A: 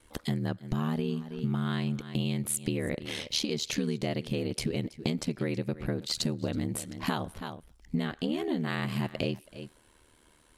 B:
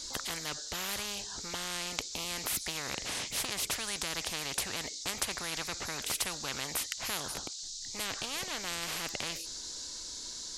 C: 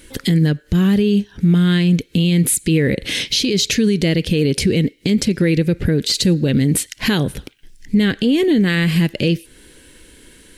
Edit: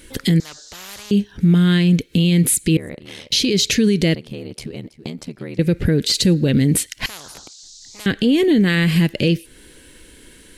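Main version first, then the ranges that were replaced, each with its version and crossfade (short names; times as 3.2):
C
0.4–1.11 from B
2.77–3.32 from A
4.15–5.59 from A
7.06–8.06 from B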